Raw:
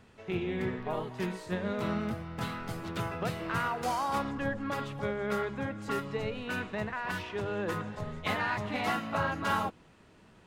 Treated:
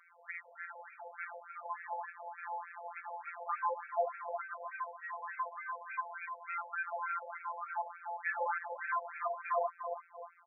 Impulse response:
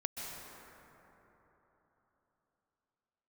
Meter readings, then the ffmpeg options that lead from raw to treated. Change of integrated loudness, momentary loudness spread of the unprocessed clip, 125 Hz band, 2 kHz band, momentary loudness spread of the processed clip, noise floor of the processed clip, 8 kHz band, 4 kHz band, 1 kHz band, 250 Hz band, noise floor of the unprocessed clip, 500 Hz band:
-6.0 dB, 6 LU, under -40 dB, -4.5 dB, 10 LU, -61 dBFS, under -30 dB, under -40 dB, -2.5 dB, under -40 dB, -59 dBFS, -7.0 dB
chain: -filter_complex "[0:a]highpass=f=330:t=q:w=0.5412,highpass=f=330:t=q:w=1.307,lowpass=f=2.9k:t=q:w=0.5176,lowpass=f=2.9k:t=q:w=0.7071,lowpass=f=2.9k:t=q:w=1.932,afreqshift=-370,asplit=2[a][b];[b]adelay=350,lowpass=f=850:p=1,volume=-8dB,asplit=2[c][d];[d]adelay=350,lowpass=f=850:p=1,volume=0.52,asplit=2[e][f];[f]adelay=350,lowpass=f=850:p=1,volume=0.52,asplit=2[g][h];[h]adelay=350,lowpass=f=850:p=1,volume=0.52,asplit=2[i][j];[j]adelay=350,lowpass=f=850:p=1,volume=0.52,asplit=2[k][l];[l]adelay=350,lowpass=f=850:p=1,volume=0.52[m];[c][e][g][i][k][m]amix=inputs=6:normalize=0[n];[a][n]amix=inputs=2:normalize=0,afftfilt=real='hypot(re,im)*cos(PI*b)':imag='0':win_size=1024:overlap=0.75,asoftclip=type=tanh:threshold=-30.5dB,afftfilt=real='re*between(b*sr/1024,660*pow(1900/660,0.5+0.5*sin(2*PI*3.4*pts/sr))/1.41,660*pow(1900/660,0.5+0.5*sin(2*PI*3.4*pts/sr))*1.41)':imag='im*between(b*sr/1024,660*pow(1900/660,0.5+0.5*sin(2*PI*3.4*pts/sr))/1.41,660*pow(1900/660,0.5+0.5*sin(2*PI*3.4*pts/sr))*1.41)':win_size=1024:overlap=0.75,volume=9dB"

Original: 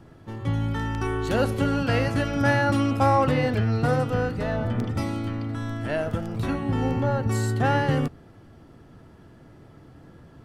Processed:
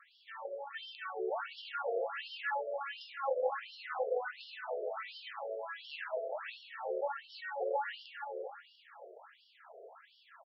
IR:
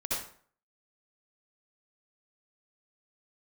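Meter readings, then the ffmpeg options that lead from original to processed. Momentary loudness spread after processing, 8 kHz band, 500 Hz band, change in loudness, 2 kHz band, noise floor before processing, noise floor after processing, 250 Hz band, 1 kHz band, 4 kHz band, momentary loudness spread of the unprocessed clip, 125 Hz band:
19 LU, under -35 dB, -10.0 dB, -14.5 dB, -11.5 dB, -50 dBFS, -66 dBFS, under -30 dB, -12.0 dB, -9.0 dB, 8 LU, under -40 dB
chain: -filter_complex "[0:a]acompressor=threshold=-31dB:ratio=10,asplit=2[a][b];[b]adelay=428,lowpass=f=3.6k:p=1,volume=-6dB,asplit=2[c][d];[d]adelay=428,lowpass=f=3.6k:p=1,volume=0.38,asplit=2[e][f];[f]adelay=428,lowpass=f=3.6k:p=1,volume=0.38,asplit=2[g][h];[h]adelay=428,lowpass=f=3.6k:p=1,volume=0.38,asplit=2[i][j];[j]adelay=428,lowpass=f=3.6k:p=1,volume=0.38[k];[a][c][e][g][i][k]amix=inputs=6:normalize=0,asplit=2[l][m];[1:a]atrim=start_sample=2205,highshelf=f=4.3k:g=10[n];[m][n]afir=irnorm=-1:irlink=0,volume=-9dB[o];[l][o]amix=inputs=2:normalize=0,afftfilt=real='re*between(b*sr/1024,490*pow(4000/490,0.5+0.5*sin(2*PI*1.4*pts/sr))/1.41,490*pow(4000/490,0.5+0.5*sin(2*PI*1.4*pts/sr))*1.41)':imag='im*between(b*sr/1024,490*pow(4000/490,0.5+0.5*sin(2*PI*1.4*pts/sr))/1.41,490*pow(4000/490,0.5+0.5*sin(2*PI*1.4*pts/sr))*1.41)':win_size=1024:overlap=0.75,volume=2.5dB"

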